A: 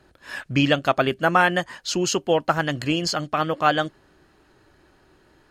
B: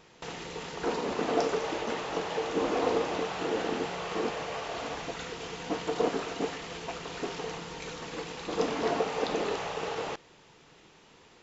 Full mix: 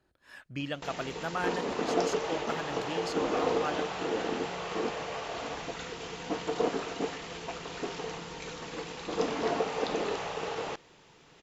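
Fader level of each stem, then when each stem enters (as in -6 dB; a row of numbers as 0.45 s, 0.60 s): -16.5 dB, -1.0 dB; 0.00 s, 0.60 s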